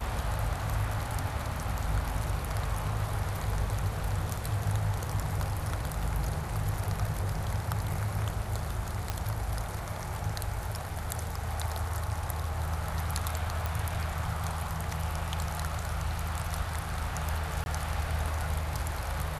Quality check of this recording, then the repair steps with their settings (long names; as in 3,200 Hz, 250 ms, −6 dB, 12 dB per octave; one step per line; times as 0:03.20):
0:09.10: click −15 dBFS
0:13.66: click
0:17.64–0:17.66: drop-out 21 ms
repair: click removal
repair the gap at 0:17.64, 21 ms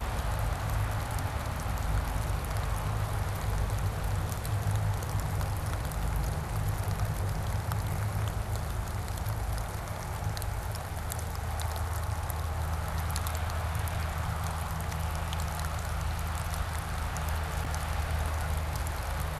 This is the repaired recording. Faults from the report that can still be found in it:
none of them is left